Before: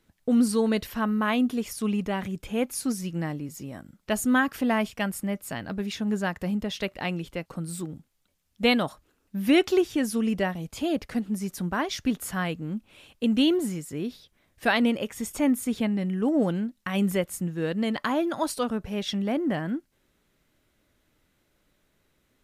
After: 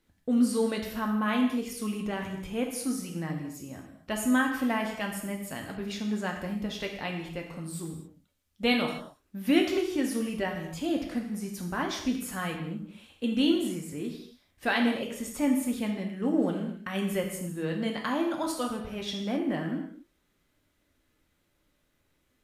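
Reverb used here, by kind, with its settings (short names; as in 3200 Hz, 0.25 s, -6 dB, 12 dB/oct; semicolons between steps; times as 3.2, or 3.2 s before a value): non-linear reverb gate 0.29 s falling, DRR 1 dB; gain -5.5 dB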